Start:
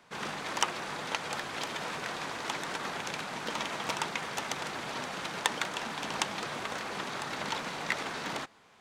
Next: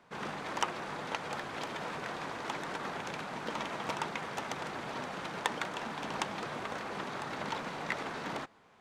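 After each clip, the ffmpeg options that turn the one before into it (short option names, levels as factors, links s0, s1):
-af "highshelf=f=2300:g=-9.5"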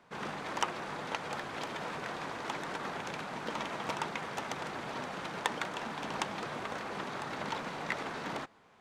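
-af anull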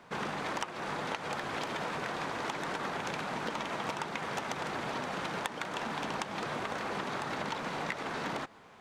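-af "acompressor=threshold=0.0112:ratio=10,volume=2.24"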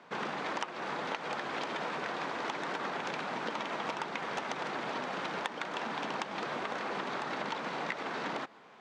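-af "highpass=200,lowpass=5700"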